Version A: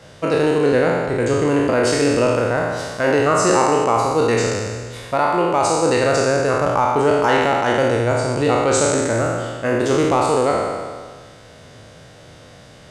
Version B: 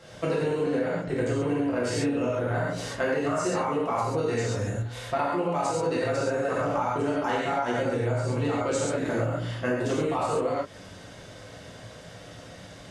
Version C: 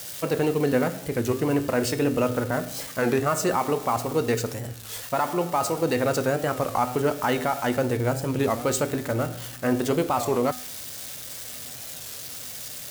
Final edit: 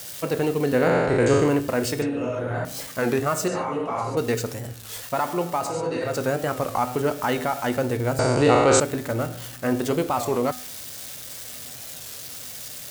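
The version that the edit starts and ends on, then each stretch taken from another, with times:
C
0.84–1.49 s: from A, crossfade 0.24 s
2.02–2.65 s: from B
3.48–4.17 s: from B
5.64–6.12 s: from B, crossfade 0.24 s
8.19–8.80 s: from A

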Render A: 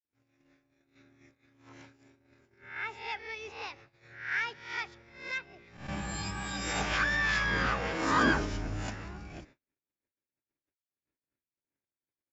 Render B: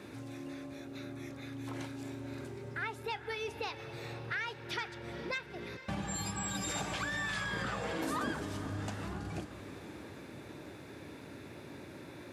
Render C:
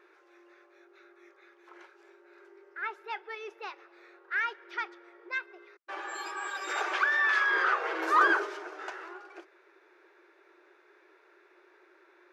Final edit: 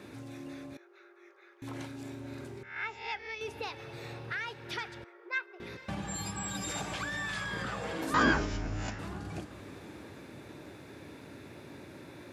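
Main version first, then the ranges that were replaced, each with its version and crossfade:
B
0.77–1.62 s: from C
2.63–3.41 s: from A
5.04–5.60 s: from C
8.14–8.99 s: from A

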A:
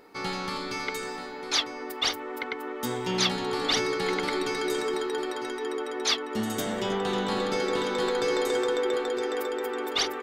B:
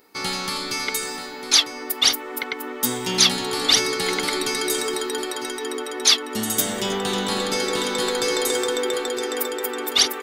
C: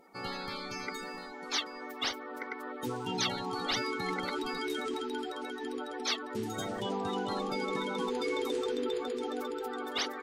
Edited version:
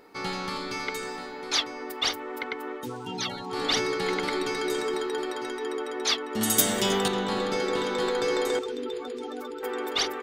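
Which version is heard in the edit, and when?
A
2.80–3.54 s: from C, crossfade 0.10 s
6.41–7.08 s: from B
8.59–9.63 s: from C

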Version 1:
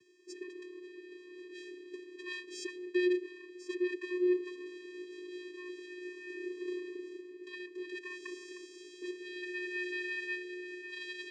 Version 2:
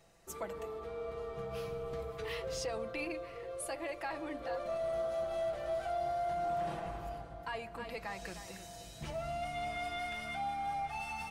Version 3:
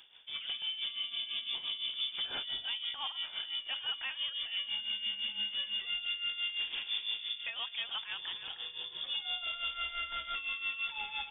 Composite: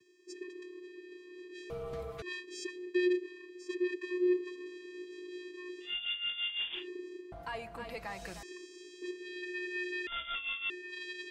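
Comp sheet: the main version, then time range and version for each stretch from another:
1
1.70–2.22 s: from 2
5.88–6.80 s: from 3, crossfade 0.16 s
7.32–8.43 s: from 2
10.07–10.70 s: from 3

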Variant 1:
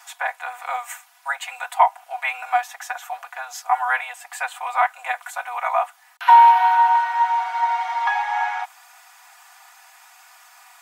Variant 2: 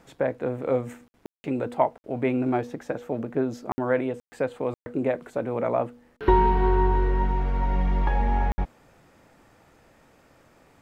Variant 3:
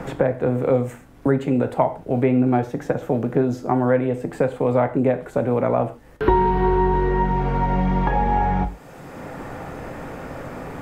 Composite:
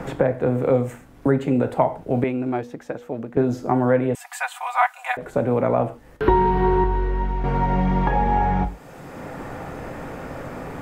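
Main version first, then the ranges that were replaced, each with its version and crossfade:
3
2.24–3.37 s: from 2
4.15–5.17 s: from 1
6.84–7.44 s: from 2

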